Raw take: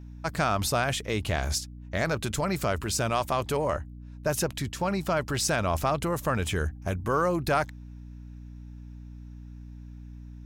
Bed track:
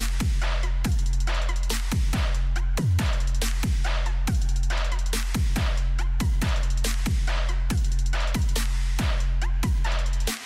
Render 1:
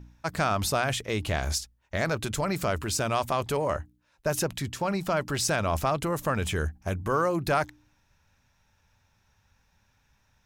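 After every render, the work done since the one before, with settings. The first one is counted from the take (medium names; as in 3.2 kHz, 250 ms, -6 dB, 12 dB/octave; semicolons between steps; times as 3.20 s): de-hum 60 Hz, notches 5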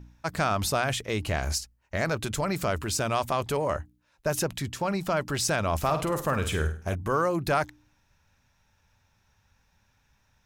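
1.18–2.08 s: band-stop 3.5 kHz, Q 6.9; 5.78–6.95 s: flutter echo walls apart 8.6 m, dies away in 0.38 s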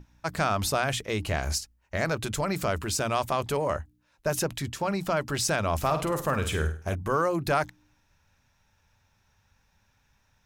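hum notches 60/120/180/240/300 Hz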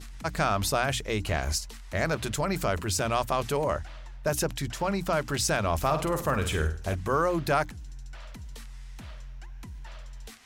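add bed track -18.5 dB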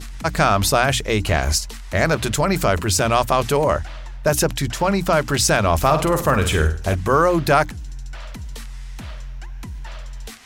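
trim +9.5 dB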